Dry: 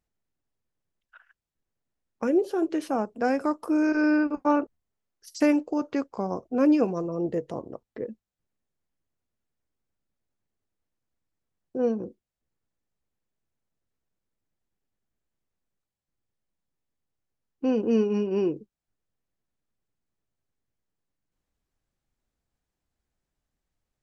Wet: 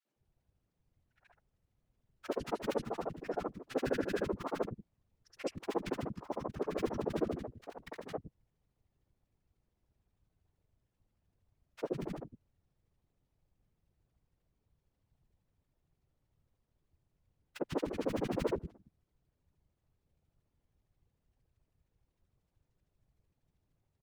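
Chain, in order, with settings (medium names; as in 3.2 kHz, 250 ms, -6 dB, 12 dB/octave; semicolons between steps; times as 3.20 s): cycle switcher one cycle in 2, muted; high-pass 130 Hz; treble shelf 5.8 kHz -8 dB; in parallel at -3 dB: compression, threshold -36 dBFS, peak gain reduction 16.5 dB; on the sum: peak limiter -19 dBFS, peak gain reduction 9 dB; granulator 51 ms, grains 13 per s; added noise brown -75 dBFS; whisper effect; three bands offset in time highs, mids, lows 50/160 ms, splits 220/1400 Hz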